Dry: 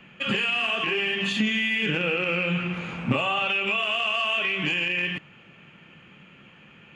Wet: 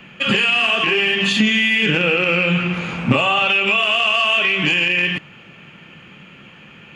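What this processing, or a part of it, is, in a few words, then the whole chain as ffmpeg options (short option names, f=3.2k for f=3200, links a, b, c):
presence and air boost: -af "equalizer=f=4.9k:t=o:w=0.77:g=3,highshelf=f=9.1k:g=4.5,volume=8dB"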